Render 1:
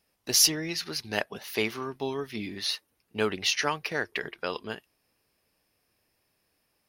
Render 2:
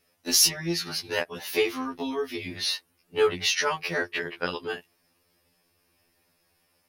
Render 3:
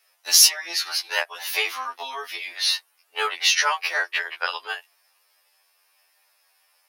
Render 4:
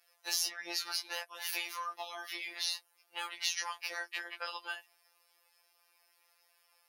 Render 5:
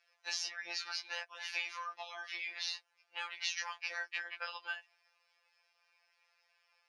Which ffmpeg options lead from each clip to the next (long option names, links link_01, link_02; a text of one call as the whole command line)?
ffmpeg -i in.wav -filter_complex "[0:a]asplit=2[link_01][link_02];[link_02]acompressor=threshold=-34dB:ratio=6,volume=-3dB[link_03];[link_01][link_03]amix=inputs=2:normalize=0,afftfilt=real='re*2*eq(mod(b,4),0)':imag='im*2*eq(mod(b,4),0)':win_size=2048:overlap=0.75,volume=2.5dB" out.wav
ffmpeg -i in.wav -af "highpass=frequency=710:width=0.5412,highpass=frequency=710:width=1.3066,volume=6dB" out.wav
ffmpeg -i in.wav -filter_complex "[0:a]lowshelf=frequency=500:gain=9,acrossover=split=790|5200[link_01][link_02][link_03];[link_01]acompressor=threshold=-42dB:ratio=4[link_04];[link_02]acompressor=threshold=-33dB:ratio=4[link_05];[link_03]acompressor=threshold=-31dB:ratio=4[link_06];[link_04][link_05][link_06]amix=inputs=3:normalize=0,afftfilt=real='hypot(re,im)*cos(PI*b)':imag='0':win_size=1024:overlap=0.75,volume=-3dB" out.wav
ffmpeg -i in.wav -af "highpass=150,equalizer=frequency=330:width_type=q:width=4:gain=-9,equalizer=frequency=1600:width_type=q:width=4:gain=5,equalizer=frequency=2400:width_type=q:width=4:gain=6,lowpass=frequency=6400:width=0.5412,lowpass=frequency=6400:width=1.3066,volume=-4dB" out.wav